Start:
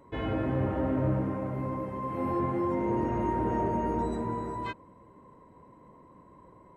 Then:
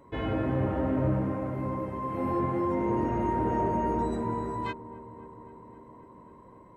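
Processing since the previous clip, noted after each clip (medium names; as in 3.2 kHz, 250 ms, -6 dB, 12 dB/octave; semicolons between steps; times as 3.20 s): feedback echo behind a low-pass 266 ms, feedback 77%, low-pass 1.3 kHz, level -18 dB; trim +1 dB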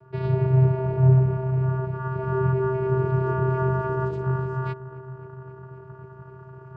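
reverse; upward compressor, threshold -40 dBFS; reverse; vocoder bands 8, square 130 Hz; trim +7.5 dB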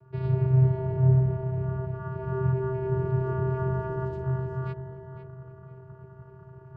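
bass shelf 150 Hz +10 dB; on a send: filtered feedback delay 503 ms, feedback 34%, low-pass 2.3 kHz, level -9 dB; on the sum: trim -7.5 dB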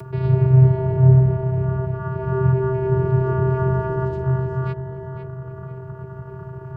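upward compressor, threshold -34 dBFS; trim +8 dB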